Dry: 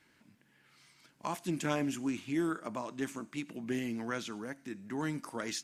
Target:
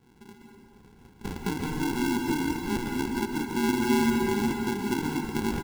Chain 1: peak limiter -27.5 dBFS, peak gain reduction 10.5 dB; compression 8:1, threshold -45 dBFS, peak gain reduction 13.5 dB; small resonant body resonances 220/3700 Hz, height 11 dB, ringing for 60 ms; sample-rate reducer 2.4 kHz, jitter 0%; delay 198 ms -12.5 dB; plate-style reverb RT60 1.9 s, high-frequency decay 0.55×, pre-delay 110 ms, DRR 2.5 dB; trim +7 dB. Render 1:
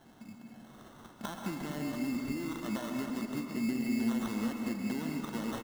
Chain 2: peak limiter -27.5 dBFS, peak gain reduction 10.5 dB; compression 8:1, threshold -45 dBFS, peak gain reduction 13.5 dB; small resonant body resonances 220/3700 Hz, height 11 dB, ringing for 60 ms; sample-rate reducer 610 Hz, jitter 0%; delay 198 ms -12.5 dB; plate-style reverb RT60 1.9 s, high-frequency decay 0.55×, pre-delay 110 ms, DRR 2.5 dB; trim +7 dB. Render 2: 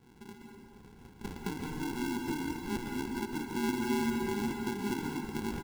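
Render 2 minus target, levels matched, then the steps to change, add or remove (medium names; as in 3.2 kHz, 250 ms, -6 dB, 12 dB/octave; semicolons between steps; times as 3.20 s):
compression: peak gain reduction +8 dB
change: compression 8:1, threshold -36 dBFS, peak gain reduction 5.5 dB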